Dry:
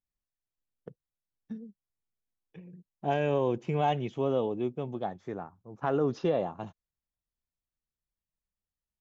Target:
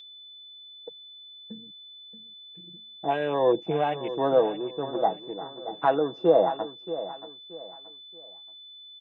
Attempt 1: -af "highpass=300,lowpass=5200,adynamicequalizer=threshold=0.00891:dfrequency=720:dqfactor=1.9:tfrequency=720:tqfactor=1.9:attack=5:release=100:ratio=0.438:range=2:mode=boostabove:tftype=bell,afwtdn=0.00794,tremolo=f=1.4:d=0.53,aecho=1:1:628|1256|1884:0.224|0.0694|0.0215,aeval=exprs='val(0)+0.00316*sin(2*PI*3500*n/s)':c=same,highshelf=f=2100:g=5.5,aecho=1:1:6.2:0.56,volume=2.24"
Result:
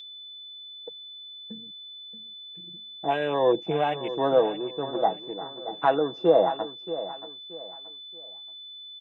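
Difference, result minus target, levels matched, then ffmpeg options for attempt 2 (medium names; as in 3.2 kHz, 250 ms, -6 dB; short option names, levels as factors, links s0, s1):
4 kHz band +4.0 dB
-af "highpass=300,lowpass=5200,adynamicequalizer=threshold=0.00891:dfrequency=720:dqfactor=1.9:tfrequency=720:tqfactor=1.9:attack=5:release=100:ratio=0.438:range=2:mode=boostabove:tftype=bell,afwtdn=0.00794,tremolo=f=1.4:d=0.53,aecho=1:1:628|1256|1884:0.224|0.0694|0.0215,aeval=exprs='val(0)+0.00316*sin(2*PI*3500*n/s)':c=same,aecho=1:1:6.2:0.56,volume=2.24"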